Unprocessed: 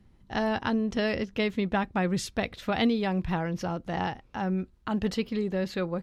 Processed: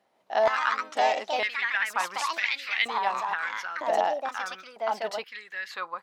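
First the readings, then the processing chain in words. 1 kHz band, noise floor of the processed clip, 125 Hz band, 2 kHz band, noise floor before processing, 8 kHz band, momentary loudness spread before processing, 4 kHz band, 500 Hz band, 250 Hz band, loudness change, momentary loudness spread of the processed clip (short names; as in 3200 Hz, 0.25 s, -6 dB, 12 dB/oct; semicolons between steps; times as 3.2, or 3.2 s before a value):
+6.5 dB, -67 dBFS, under -25 dB, +7.0 dB, -60 dBFS, +2.5 dB, 6 LU, +3.0 dB, +1.0 dB, -22.0 dB, +1.5 dB, 10 LU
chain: echoes that change speed 0.158 s, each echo +3 st, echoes 2; stepped high-pass 2.1 Hz 650–2100 Hz; gain -1.5 dB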